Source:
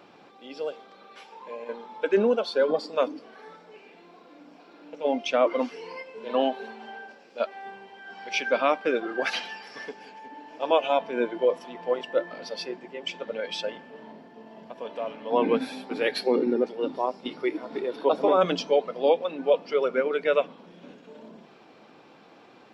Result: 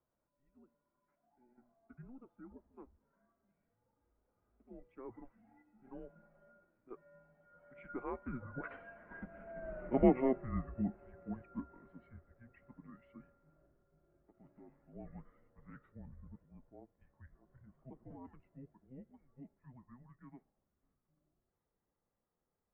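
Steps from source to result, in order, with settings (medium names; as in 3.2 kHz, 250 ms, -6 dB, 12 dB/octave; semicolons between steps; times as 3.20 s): Doppler pass-by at 9.77 s, 23 m/s, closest 4.9 m; mistuned SSB -260 Hz 210–2000 Hz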